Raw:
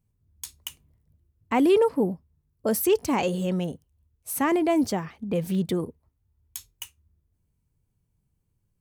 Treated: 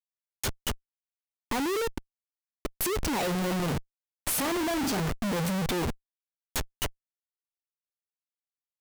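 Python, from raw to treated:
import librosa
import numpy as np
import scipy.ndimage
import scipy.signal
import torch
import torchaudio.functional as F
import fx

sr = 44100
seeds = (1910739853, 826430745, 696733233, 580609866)

y = fx.gate_flip(x, sr, shuts_db=-20.0, range_db=-31, at=(1.87, 2.81))
y = fx.room_flutter(y, sr, wall_m=7.1, rt60_s=0.29, at=(3.38, 5.0))
y = fx.schmitt(y, sr, flips_db=-41.5)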